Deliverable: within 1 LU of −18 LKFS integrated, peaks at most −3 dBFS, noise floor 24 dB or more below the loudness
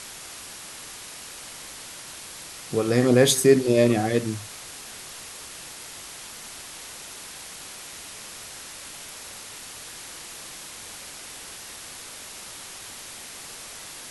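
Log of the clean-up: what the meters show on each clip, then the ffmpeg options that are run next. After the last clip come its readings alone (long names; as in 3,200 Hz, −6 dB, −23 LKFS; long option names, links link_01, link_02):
background noise floor −41 dBFS; target noise floor −53 dBFS; integrated loudness −28.5 LKFS; sample peak −4.0 dBFS; target loudness −18.0 LKFS
→ -af "afftdn=noise_reduction=12:noise_floor=-41"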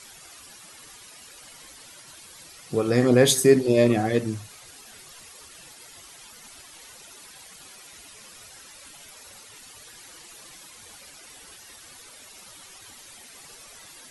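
background noise floor −48 dBFS; integrated loudness −20.5 LKFS; sample peak −4.5 dBFS; target loudness −18.0 LKFS
→ -af "volume=2.5dB,alimiter=limit=-3dB:level=0:latency=1"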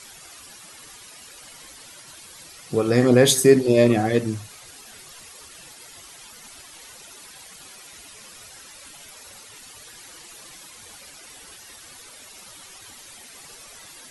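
integrated loudness −18.0 LKFS; sample peak −3.0 dBFS; background noise floor −45 dBFS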